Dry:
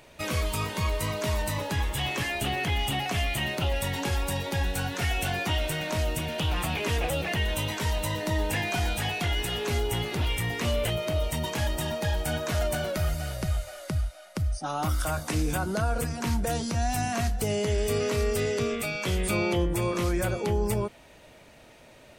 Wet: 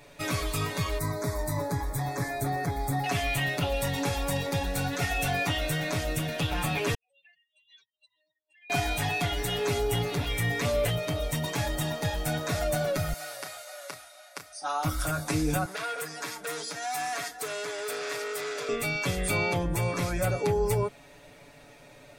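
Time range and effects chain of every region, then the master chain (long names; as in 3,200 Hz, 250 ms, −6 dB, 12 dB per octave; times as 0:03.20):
0:00.98–0:03.04: Butterworth band-reject 2,900 Hz, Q 1.8 + parametric band 3,300 Hz −6.5 dB 2.6 octaves
0:06.94–0:08.70: expanding power law on the bin magnitudes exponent 3.3 + flat-topped band-pass 4,400 Hz, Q 2 + downward compressor 2.5 to 1, threshold −55 dBFS
0:13.13–0:14.85: high-pass filter 700 Hz + double-tracking delay 32 ms −8.5 dB
0:15.65–0:18.69: high-pass filter 470 Hz + comb filter 6.4 ms, depth 71% + saturating transformer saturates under 3,900 Hz
whole clip: notch filter 3,000 Hz, Q 11; comb filter 7 ms, depth 94%; level −2 dB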